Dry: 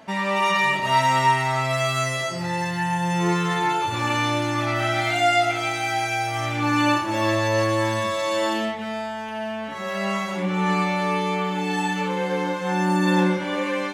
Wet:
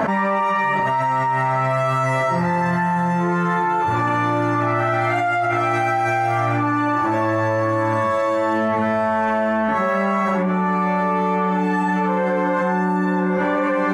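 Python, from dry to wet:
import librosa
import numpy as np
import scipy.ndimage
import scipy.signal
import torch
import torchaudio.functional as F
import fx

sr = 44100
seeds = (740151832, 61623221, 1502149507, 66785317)

y = fx.high_shelf_res(x, sr, hz=2200.0, db=-12.5, q=1.5)
y = y + 10.0 ** (-16.0 / 20.0) * np.pad(y, (int(1036 * sr / 1000.0), 0))[:len(y)]
y = fx.env_flatten(y, sr, amount_pct=100)
y = y * 10.0 ** (-6.0 / 20.0)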